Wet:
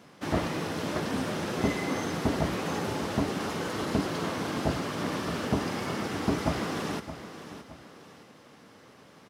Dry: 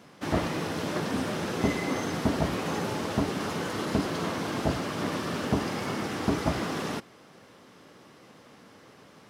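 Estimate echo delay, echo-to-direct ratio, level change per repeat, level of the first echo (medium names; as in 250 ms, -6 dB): 618 ms, -11.5 dB, -8.0 dB, -12.0 dB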